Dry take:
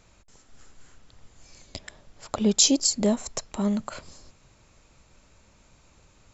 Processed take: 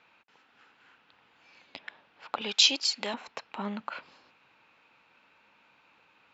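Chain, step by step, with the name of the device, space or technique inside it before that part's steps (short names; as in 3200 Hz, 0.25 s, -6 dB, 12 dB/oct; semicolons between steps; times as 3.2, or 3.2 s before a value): 2.41–3.14 tilt +4.5 dB/oct; phone earpiece (speaker cabinet 350–3700 Hz, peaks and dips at 380 Hz -6 dB, 610 Hz -7 dB, 880 Hz +4 dB, 1500 Hz +5 dB, 2600 Hz +7 dB); gain -1.5 dB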